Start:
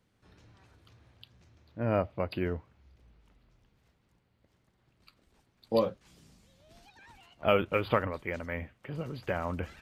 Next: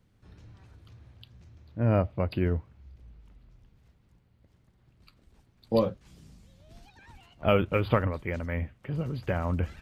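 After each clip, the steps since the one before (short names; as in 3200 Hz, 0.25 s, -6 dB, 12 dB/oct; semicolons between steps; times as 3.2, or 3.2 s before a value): low shelf 200 Hz +11.5 dB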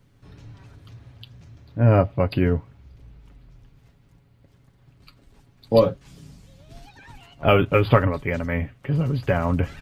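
comb 7.2 ms, depth 48%; gain +7 dB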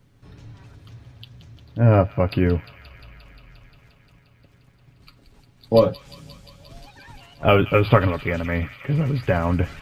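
thin delay 0.176 s, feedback 81%, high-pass 2200 Hz, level -11 dB; gain +1 dB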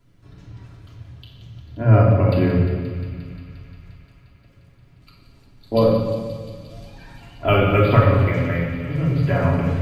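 shoebox room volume 1700 m³, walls mixed, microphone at 3 m; gain -5 dB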